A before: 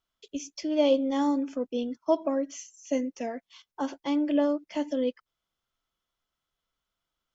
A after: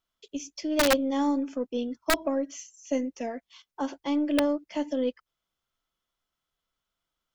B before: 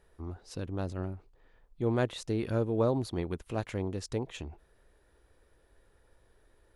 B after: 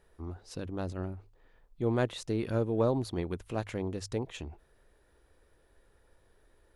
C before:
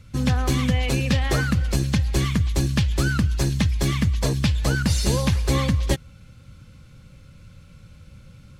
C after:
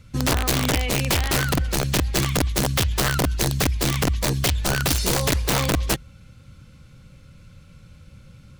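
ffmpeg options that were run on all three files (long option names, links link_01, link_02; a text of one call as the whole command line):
ffmpeg -i in.wav -af "aeval=exprs='(mod(5.31*val(0)+1,2)-1)/5.31':channel_layout=same,aeval=exprs='0.188*(cos(1*acos(clip(val(0)/0.188,-1,1)))-cos(1*PI/2))+0.00237*(cos(6*acos(clip(val(0)/0.188,-1,1)))-cos(6*PI/2))':channel_layout=same,bandreject=frequency=50:width_type=h:width=6,bandreject=frequency=100:width_type=h:width=6" out.wav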